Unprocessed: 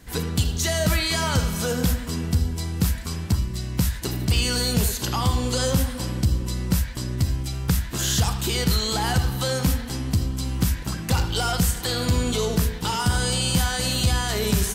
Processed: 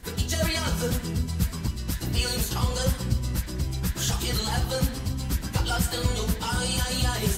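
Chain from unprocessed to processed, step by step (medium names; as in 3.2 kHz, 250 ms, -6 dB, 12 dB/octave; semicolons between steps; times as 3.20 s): plain phase-vocoder stretch 0.5×; reverberation RT60 0.45 s, pre-delay 85 ms, DRR 16.5 dB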